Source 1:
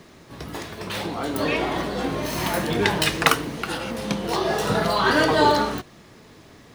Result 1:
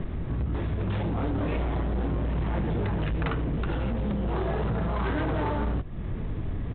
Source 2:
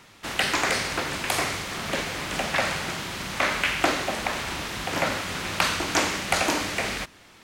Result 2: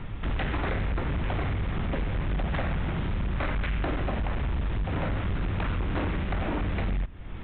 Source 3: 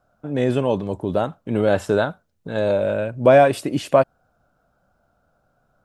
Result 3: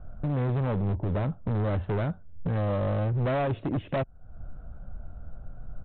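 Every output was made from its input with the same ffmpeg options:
-filter_complex "[0:a]aemphasis=mode=reproduction:type=riaa,acrossover=split=2900[link_01][link_02];[link_02]acompressor=threshold=-41dB:ratio=4:attack=1:release=60[link_03];[link_01][link_03]amix=inputs=2:normalize=0,lowshelf=frequency=83:gain=12,acompressor=threshold=-32dB:ratio=3,aresample=8000,asoftclip=type=hard:threshold=-30.5dB,aresample=44100,volume=6dB"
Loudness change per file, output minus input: −7.0, −4.5, −9.0 LU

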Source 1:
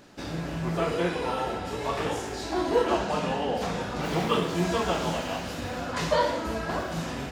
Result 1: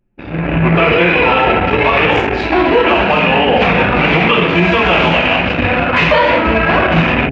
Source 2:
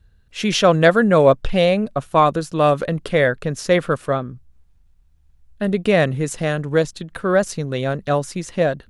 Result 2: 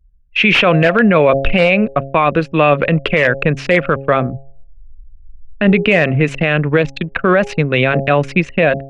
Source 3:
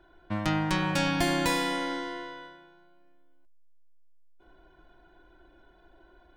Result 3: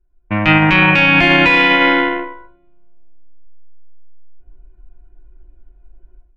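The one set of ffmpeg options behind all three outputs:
-filter_complex "[0:a]acrossover=split=210|1400[link_01][link_02][link_03];[link_03]aeval=exprs='(mod(5.62*val(0)+1,2)-1)/5.62':channel_layout=same[link_04];[link_01][link_02][link_04]amix=inputs=3:normalize=0,anlmdn=6.31,dynaudnorm=framelen=280:gausssize=3:maxgain=16dB,lowpass=frequency=2500:width_type=q:width=5.2,bandreject=frequency=136.4:width_type=h:width=4,bandreject=frequency=272.8:width_type=h:width=4,bandreject=frequency=409.2:width_type=h:width=4,bandreject=frequency=545.6:width_type=h:width=4,bandreject=frequency=682:width_type=h:width=4,bandreject=frequency=818.4:width_type=h:width=4,alimiter=level_in=7dB:limit=-1dB:release=50:level=0:latency=1,volume=-1dB"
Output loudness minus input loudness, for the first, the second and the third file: +17.0, +5.0, +17.5 LU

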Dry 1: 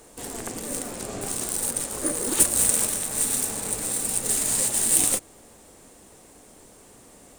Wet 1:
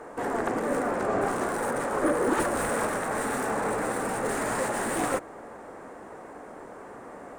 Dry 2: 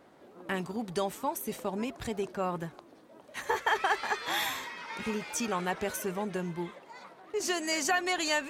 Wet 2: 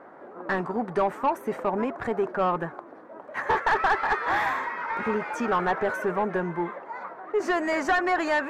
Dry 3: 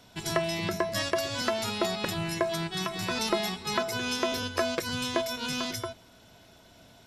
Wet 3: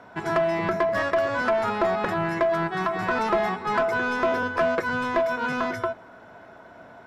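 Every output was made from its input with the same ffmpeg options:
-filter_complex "[0:a]highshelf=frequency=2300:width_type=q:width=1.5:gain=-11.5,asplit=2[link_01][link_02];[link_02]highpass=frequency=720:poles=1,volume=21dB,asoftclip=type=tanh:threshold=-11.5dB[link_03];[link_01][link_03]amix=inputs=2:normalize=0,lowpass=frequency=1200:poles=1,volume=-6dB"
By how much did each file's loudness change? −5.5, +6.0, +5.5 LU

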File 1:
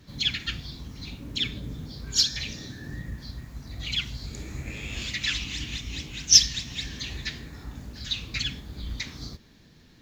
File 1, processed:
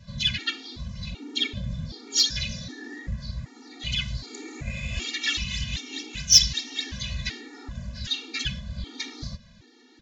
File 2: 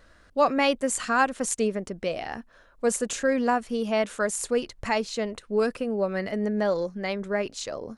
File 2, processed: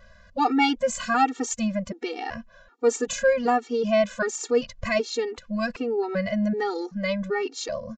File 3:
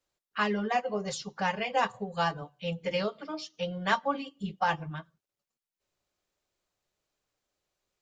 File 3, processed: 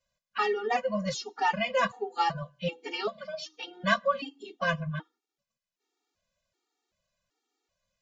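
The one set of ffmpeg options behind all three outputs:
-af "aresample=16000,aresample=44100,acontrast=59,afftfilt=real='re*gt(sin(2*PI*1.3*pts/sr)*(1-2*mod(floor(b*sr/1024/240),2)),0)':imag='im*gt(sin(2*PI*1.3*pts/sr)*(1-2*mod(floor(b*sr/1024/240),2)),0)':win_size=1024:overlap=0.75,volume=-1dB"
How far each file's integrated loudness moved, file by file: +0.5, +1.0, +1.0 LU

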